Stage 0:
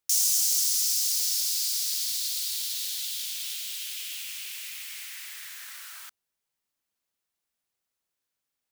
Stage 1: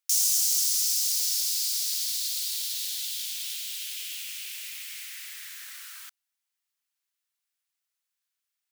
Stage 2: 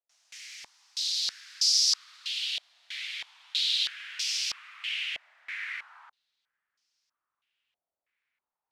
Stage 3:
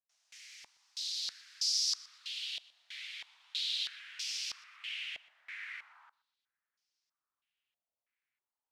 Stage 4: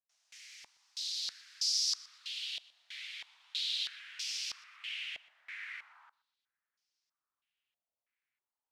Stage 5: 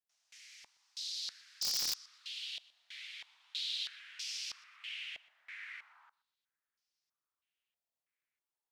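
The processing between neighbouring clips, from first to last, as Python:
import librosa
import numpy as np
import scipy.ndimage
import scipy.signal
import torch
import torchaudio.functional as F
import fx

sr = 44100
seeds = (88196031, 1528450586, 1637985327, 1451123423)

y1 = scipy.signal.sosfilt(scipy.signal.butter(2, 1300.0, 'highpass', fs=sr, output='sos'), x)
y2 = fx.rider(y1, sr, range_db=4, speed_s=0.5)
y2 = fx.filter_held_lowpass(y2, sr, hz=3.1, low_hz=660.0, high_hz=5300.0)
y3 = fx.echo_feedback(y2, sr, ms=122, feedback_pct=24, wet_db=-21)
y3 = y3 * 10.0 ** (-8.0 / 20.0)
y4 = y3
y5 = (np.mod(10.0 ** (23.0 / 20.0) * y4 + 1.0, 2.0) - 1.0) / 10.0 ** (23.0 / 20.0)
y5 = y5 * 10.0 ** (-3.0 / 20.0)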